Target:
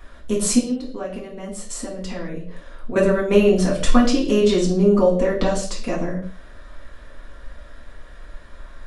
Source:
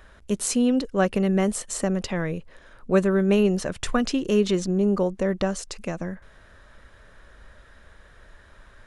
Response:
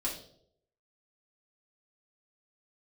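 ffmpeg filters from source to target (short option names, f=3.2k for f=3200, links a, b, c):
-filter_complex "[0:a]asettb=1/sr,asplit=3[a][b][c];[a]atrim=end=0.584[d];[b]atrim=start=0.58:end=2.96,asetpts=PTS-STARTPTS,afade=t=in:d=0.004:c=qsin,afade=t=out:st=2.376:d=0.004:c=qsin,acompressor=threshold=-33dB:ratio=6[e];[c]atrim=start=2.956[f];[d][e]acrossfade=d=0.004:c1=hsin:c2=qsin[g];[g][f]acrossfade=d=0.004:c1=qsin:c2=hsin[h];[1:a]atrim=start_sample=2205,afade=t=out:st=0.28:d=0.01,atrim=end_sample=12789[i];[h][i]afir=irnorm=-1:irlink=0,volume=2dB"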